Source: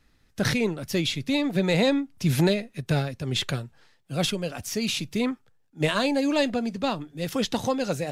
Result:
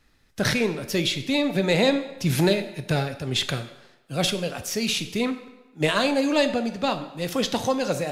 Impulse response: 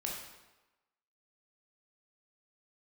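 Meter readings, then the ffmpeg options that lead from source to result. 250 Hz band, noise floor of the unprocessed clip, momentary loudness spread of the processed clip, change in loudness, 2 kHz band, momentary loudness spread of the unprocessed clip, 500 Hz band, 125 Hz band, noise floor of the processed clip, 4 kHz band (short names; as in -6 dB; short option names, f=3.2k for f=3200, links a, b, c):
+0.5 dB, -63 dBFS, 8 LU, +1.5 dB, +3.0 dB, 8 LU, +2.5 dB, -0.5 dB, -61 dBFS, +3.0 dB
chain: -filter_complex "[0:a]asplit=2[a][b];[b]highpass=270[c];[1:a]atrim=start_sample=2205[d];[c][d]afir=irnorm=-1:irlink=0,volume=-6.5dB[e];[a][e]amix=inputs=2:normalize=0"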